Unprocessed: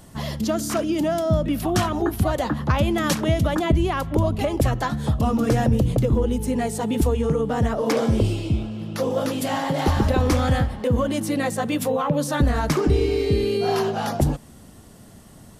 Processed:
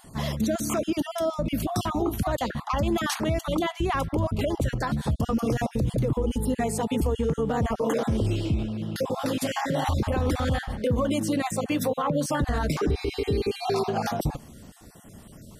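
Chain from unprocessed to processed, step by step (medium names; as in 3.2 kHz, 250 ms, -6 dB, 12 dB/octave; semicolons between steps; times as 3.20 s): random holes in the spectrogram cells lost 28%; peak limiter -17 dBFS, peak gain reduction 7.5 dB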